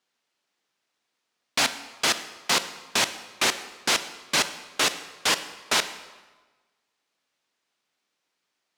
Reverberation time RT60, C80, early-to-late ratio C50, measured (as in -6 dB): 1.3 s, 14.0 dB, 12.5 dB